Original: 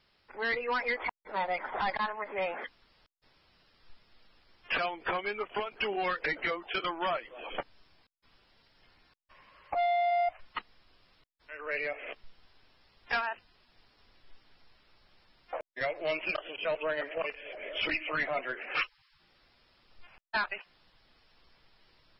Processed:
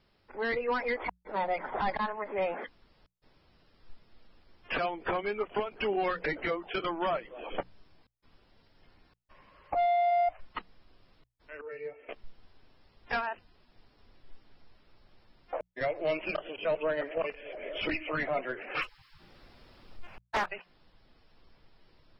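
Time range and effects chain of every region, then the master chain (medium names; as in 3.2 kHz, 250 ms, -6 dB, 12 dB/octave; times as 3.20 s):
11.61–12.09 s: high-pass 84 Hz + tone controls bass +12 dB, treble -2 dB + feedback comb 450 Hz, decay 0.18 s, mix 90%
18.82–20.46 s: companding laws mixed up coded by mu + loudspeaker Doppler distortion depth 0.58 ms
whole clip: tilt shelf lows +5.5 dB, about 810 Hz; hum notches 60/120/180 Hz; trim +1 dB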